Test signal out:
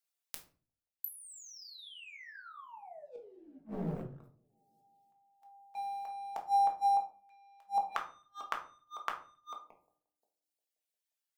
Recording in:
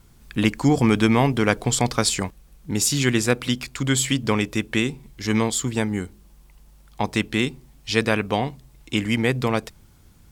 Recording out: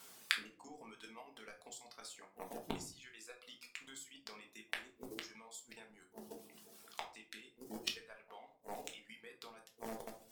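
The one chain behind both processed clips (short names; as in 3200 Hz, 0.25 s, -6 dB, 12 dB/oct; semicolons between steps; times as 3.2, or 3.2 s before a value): octaver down 2 oct, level -5 dB; HPF 510 Hz 12 dB/oct; high shelf 2400 Hz +5.5 dB; analogue delay 0.176 s, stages 1024, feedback 63%, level -16 dB; level quantiser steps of 10 dB; sample leveller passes 2; compressor 4:1, threshold -29 dBFS; flipped gate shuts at -29 dBFS, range -29 dB; reverb removal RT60 1.6 s; shoebox room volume 290 m³, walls furnished, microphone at 1.6 m; gain +5 dB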